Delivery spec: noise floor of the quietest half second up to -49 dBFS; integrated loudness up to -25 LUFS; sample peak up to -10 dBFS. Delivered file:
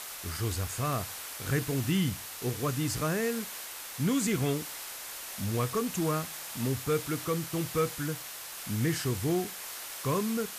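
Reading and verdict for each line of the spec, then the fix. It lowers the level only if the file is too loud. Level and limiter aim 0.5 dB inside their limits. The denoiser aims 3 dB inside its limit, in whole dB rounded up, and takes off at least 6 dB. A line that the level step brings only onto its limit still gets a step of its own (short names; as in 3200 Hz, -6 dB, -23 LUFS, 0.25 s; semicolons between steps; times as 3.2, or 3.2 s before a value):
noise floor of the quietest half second -42 dBFS: fail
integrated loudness -32.0 LUFS: OK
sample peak -15.5 dBFS: OK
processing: denoiser 10 dB, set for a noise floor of -42 dBFS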